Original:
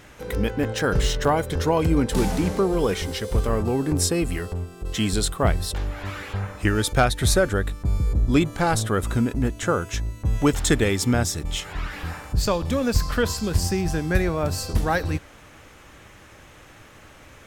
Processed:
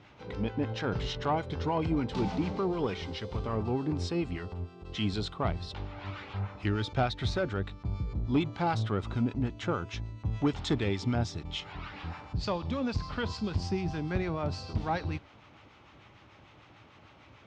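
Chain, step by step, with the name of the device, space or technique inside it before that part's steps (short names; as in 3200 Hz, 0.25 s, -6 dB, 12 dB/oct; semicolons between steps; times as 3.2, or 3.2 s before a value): guitar amplifier with harmonic tremolo (harmonic tremolo 6.7 Hz, depth 50%, crossover 850 Hz; soft clip -13.5 dBFS, distortion -19 dB; speaker cabinet 79–4600 Hz, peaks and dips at 110 Hz +4 dB, 500 Hz -5 dB, 880 Hz +3 dB, 1700 Hz -7 dB); gain -4.5 dB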